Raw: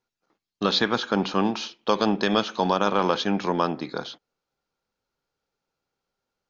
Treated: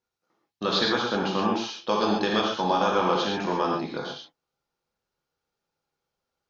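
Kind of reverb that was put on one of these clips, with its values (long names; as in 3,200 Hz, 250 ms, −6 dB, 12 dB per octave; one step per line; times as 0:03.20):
reverb whose tail is shaped and stops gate 160 ms flat, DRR −2.5 dB
level −5 dB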